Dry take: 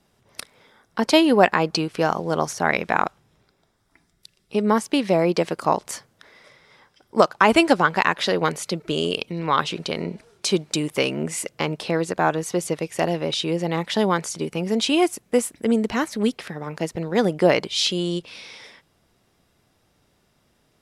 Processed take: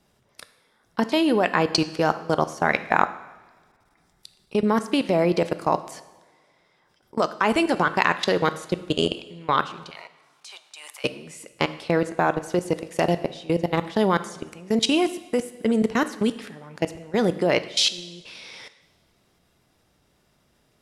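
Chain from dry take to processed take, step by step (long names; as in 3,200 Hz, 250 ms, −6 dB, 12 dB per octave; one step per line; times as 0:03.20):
0:09.90–0:11.04: Chebyshev high-pass filter 740 Hz, order 4
output level in coarse steps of 23 dB
coupled-rooms reverb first 0.94 s, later 2.6 s, from −19 dB, DRR 11.5 dB
level +3.5 dB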